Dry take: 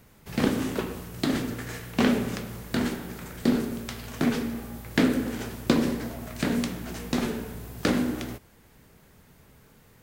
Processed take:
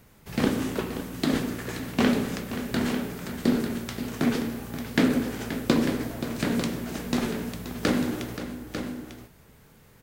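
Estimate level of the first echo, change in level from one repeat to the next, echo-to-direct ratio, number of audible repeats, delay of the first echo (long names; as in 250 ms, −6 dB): −11.5 dB, repeats not evenly spaced, −7.0 dB, 2, 528 ms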